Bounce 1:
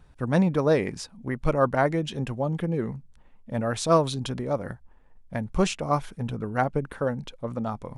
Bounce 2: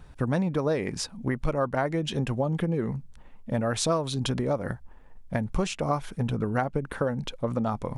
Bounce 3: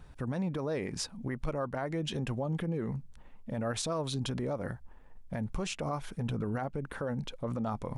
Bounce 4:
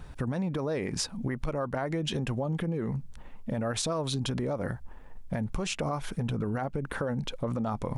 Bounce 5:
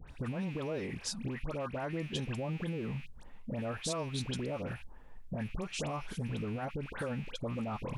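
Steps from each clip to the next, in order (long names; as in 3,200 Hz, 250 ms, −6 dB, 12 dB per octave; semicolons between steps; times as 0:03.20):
downward compressor 6 to 1, threshold −29 dBFS, peak gain reduction 14 dB; level +6 dB
brickwall limiter −21.5 dBFS, peak gain reduction 9 dB; level −3.5 dB
downward compressor 4 to 1, threshold −35 dBFS, peak gain reduction 6 dB; level +7.5 dB
loose part that buzzes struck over −39 dBFS, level −34 dBFS; all-pass dispersion highs, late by 80 ms, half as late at 1,600 Hz; level −6 dB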